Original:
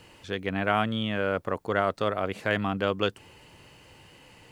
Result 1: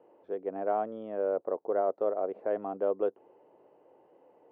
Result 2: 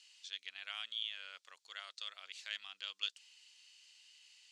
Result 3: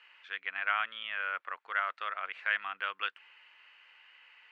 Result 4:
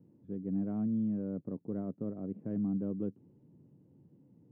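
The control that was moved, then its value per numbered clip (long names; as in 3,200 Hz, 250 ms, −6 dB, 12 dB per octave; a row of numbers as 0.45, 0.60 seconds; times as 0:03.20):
flat-topped band-pass, frequency: 520, 5,100, 1,900, 200 Hertz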